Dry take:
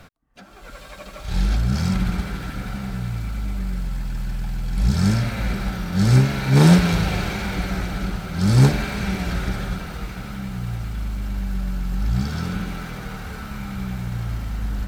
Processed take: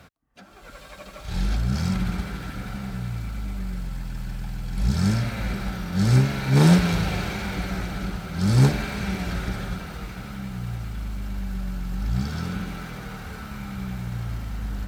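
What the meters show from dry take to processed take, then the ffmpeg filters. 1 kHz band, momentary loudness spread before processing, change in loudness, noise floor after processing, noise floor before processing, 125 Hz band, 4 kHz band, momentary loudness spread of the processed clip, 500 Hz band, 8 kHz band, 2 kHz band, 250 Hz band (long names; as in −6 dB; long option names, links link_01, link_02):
−3.0 dB, 16 LU, −3.0 dB, −45 dBFS, −41 dBFS, −3.0 dB, −3.0 dB, 16 LU, −3.0 dB, −3.0 dB, −3.0 dB, −3.0 dB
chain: -af "highpass=41,volume=-3dB"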